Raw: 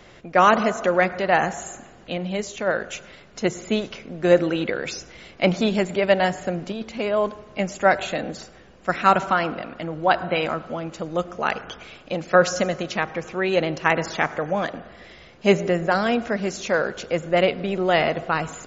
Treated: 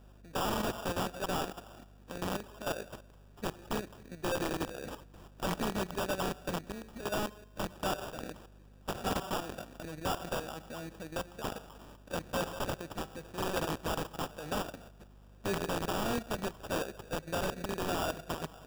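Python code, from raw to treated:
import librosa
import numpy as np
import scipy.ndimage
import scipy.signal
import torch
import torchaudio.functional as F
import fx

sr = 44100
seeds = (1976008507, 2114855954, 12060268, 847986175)

y = fx.rattle_buzz(x, sr, strikes_db=-30.0, level_db=-8.0)
y = 10.0 ** (-7.5 / 20.0) * (np.abs((y / 10.0 ** (-7.5 / 20.0) + 3.0) % 4.0 - 2.0) - 1.0)
y = fx.level_steps(y, sr, step_db=11)
y = fx.sample_hold(y, sr, seeds[0], rate_hz=2100.0, jitter_pct=0)
y = fx.add_hum(y, sr, base_hz=50, snr_db=21)
y = (np.mod(10.0 ** (16.5 / 20.0) * y + 1.0, 2.0) - 1.0) / 10.0 ** (16.5 / 20.0)
y = y * librosa.db_to_amplitude(-9.0)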